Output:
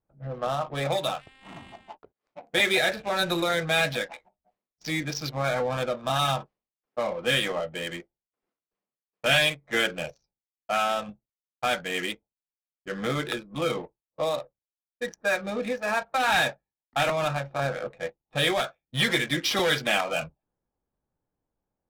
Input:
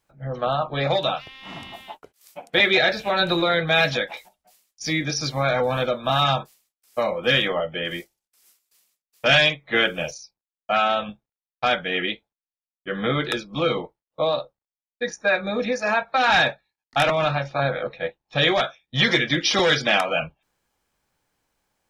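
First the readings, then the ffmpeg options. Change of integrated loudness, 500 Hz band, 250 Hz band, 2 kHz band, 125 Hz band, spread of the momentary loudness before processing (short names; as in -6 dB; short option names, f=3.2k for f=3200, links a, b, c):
-5.0 dB, -5.0 dB, -5.0 dB, -5.0 dB, -5.0 dB, 14 LU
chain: -af "adynamicsmooth=sensitivity=5.5:basefreq=770,volume=-5dB"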